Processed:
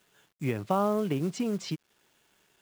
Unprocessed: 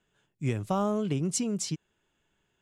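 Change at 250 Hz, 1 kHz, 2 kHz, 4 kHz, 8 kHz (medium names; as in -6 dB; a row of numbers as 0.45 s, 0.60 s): 0.0 dB, +3.0 dB, +2.0 dB, -2.5 dB, -12.0 dB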